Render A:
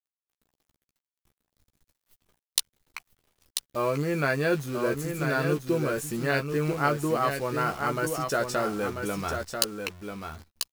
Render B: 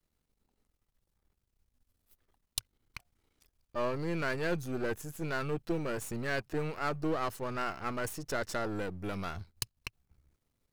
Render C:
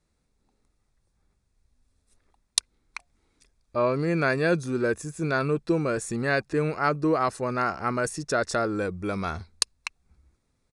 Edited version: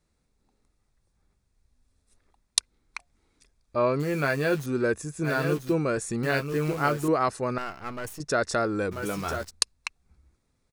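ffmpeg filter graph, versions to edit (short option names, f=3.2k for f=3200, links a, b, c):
-filter_complex "[0:a]asplit=4[a][b][c][d];[2:a]asplit=6[e][f][g][h][i][j];[e]atrim=end=4.002[k];[a]atrim=start=3.998:end=4.662[l];[f]atrim=start=4.658:end=5.29[m];[b]atrim=start=5.23:end=5.75[n];[g]atrim=start=5.69:end=6.232[o];[c]atrim=start=6.228:end=7.082[p];[h]atrim=start=7.078:end=7.582[q];[1:a]atrim=start=7.578:end=8.202[r];[i]atrim=start=8.198:end=8.93[s];[d]atrim=start=8.91:end=9.51[t];[j]atrim=start=9.49[u];[k][l]acrossfade=d=0.004:c1=hsin:c2=hsin[v];[v][m]acrossfade=d=0.004:c1=hsin:c2=hsin[w];[w][n]acrossfade=d=0.06:c1=tri:c2=tri[x];[x][o]acrossfade=d=0.06:c1=tri:c2=tri[y];[y][p]acrossfade=d=0.004:c1=hsin:c2=hsin[z];[z][q]acrossfade=d=0.004:c1=hsin:c2=hsin[aa];[aa][r]acrossfade=d=0.004:c1=hsin:c2=hsin[ab];[ab][s]acrossfade=d=0.004:c1=hsin:c2=hsin[ac];[ac][t]acrossfade=d=0.02:c1=tri:c2=tri[ad];[ad][u]acrossfade=d=0.02:c1=tri:c2=tri"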